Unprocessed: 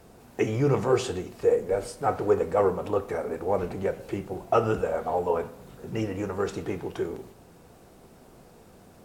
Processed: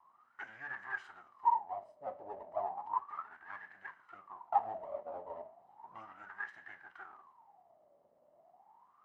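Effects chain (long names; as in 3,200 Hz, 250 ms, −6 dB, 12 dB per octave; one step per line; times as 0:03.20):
lower of the sound and its delayed copy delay 1 ms
LFO wah 0.34 Hz 560–1,700 Hz, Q 18
speech leveller within 3 dB 2 s
level +3 dB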